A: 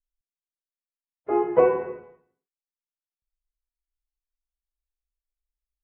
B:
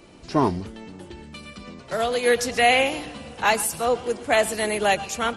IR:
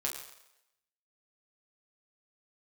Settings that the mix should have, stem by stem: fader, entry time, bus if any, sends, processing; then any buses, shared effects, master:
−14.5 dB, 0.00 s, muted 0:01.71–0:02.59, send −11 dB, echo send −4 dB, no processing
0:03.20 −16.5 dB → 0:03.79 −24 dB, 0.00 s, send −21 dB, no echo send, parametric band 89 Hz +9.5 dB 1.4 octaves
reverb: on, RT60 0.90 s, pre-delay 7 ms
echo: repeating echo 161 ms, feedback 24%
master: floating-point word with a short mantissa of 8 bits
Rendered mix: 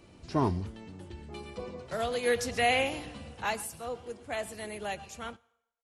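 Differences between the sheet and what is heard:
stem A −14.5 dB → −26.5 dB
stem B −16.5 dB → −9.0 dB

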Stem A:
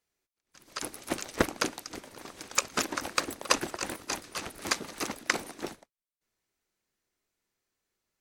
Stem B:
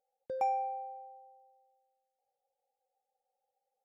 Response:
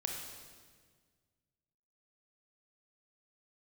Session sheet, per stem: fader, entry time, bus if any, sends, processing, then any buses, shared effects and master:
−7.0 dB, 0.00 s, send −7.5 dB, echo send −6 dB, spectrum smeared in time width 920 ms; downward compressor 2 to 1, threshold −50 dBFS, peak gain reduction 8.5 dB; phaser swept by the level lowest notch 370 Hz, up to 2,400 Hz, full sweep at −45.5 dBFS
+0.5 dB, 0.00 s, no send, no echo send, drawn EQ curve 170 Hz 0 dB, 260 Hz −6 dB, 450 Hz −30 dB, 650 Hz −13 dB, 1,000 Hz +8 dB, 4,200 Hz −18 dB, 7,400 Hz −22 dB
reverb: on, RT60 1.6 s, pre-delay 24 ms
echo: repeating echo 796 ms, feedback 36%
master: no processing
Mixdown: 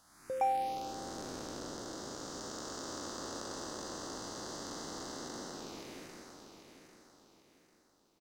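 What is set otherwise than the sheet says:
stem A −7.0 dB → +3.0 dB
stem B: missing drawn EQ curve 170 Hz 0 dB, 260 Hz −6 dB, 450 Hz −30 dB, 650 Hz −13 dB, 1,000 Hz +8 dB, 4,200 Hz −18 dB, 7,400 Hz −22 dB

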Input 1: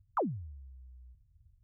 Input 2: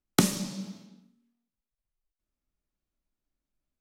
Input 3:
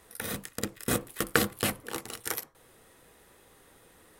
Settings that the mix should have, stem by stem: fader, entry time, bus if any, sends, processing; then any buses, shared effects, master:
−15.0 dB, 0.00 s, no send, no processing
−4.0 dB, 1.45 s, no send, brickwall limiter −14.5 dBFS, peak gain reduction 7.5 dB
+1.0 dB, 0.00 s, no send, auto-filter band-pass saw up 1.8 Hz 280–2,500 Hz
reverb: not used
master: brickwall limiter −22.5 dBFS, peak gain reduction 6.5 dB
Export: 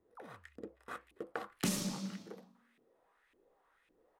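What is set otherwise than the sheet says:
stem 1 −15.0 dB → −23.0 dB
stem 3 +1.0 dB → −6.0 dB

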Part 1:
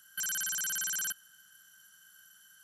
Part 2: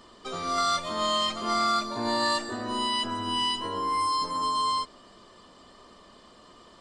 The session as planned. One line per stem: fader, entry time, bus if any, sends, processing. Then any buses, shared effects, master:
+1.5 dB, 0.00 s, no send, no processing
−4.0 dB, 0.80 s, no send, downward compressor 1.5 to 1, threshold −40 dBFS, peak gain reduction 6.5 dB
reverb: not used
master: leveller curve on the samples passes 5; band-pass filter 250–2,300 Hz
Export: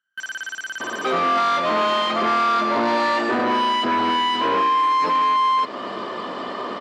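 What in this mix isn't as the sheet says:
stem 1 +1.5 dB → −5.0 dB
stem 2 −4.0 dB → +7.5 dB

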